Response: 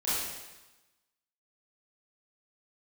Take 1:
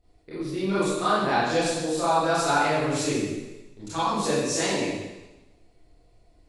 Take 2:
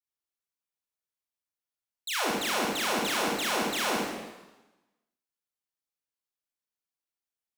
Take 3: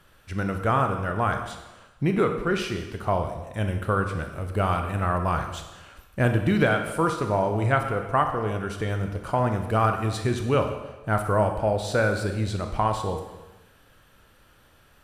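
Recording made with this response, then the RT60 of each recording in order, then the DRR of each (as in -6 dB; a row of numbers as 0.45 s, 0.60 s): 1; 1.1 s, 1.1 s, 1.1 s; -12.0 dB, -4.0 dB, 5.0 dB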